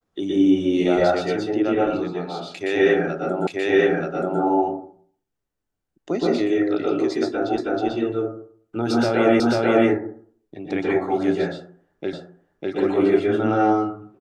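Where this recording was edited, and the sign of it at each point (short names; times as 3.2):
3.47 repeat of the last 0.93 s
7.58 repeat of the last 0.32 s
9.4 repeat of the last 0.49 s
12.13 repeat of the last 0.6 s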